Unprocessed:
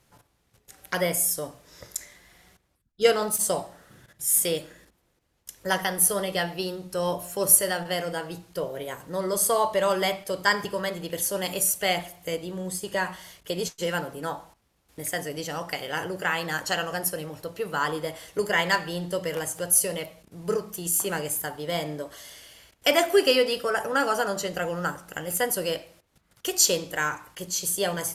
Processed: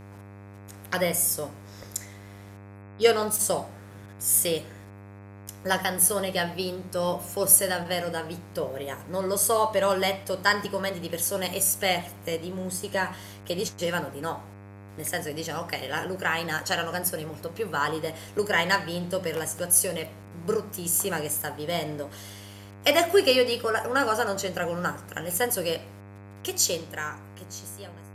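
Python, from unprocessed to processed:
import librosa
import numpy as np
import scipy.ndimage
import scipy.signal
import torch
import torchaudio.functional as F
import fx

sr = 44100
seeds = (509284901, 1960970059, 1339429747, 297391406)

y = fx.fade_out_tail(x, sr, length_s=2.27)
y = fx.dmg_buzz(y, sr, base_hz=100.0, harmonics=26, level_db=-45.0, tilt_db=-6, odd_only=False)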